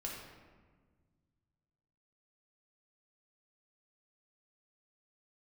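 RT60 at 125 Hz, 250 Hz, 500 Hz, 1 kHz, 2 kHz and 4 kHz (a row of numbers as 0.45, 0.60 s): 2.9, 2.3, 1.6, 1.4, 1.2, 0.85 s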